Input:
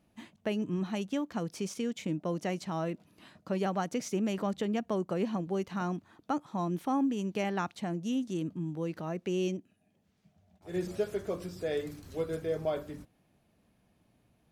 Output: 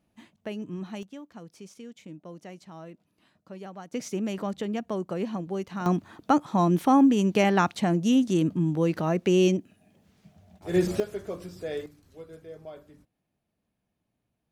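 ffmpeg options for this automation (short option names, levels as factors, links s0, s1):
-af "asetnsamples=n=441:p=0,asendcmd='1.03 volume volume -10dB;3.94 volume volume 1dB;5.86 volume volume 10.5dB;11 volume volume -0.5dB;11.86 volume volume -11dB',volume=0.708"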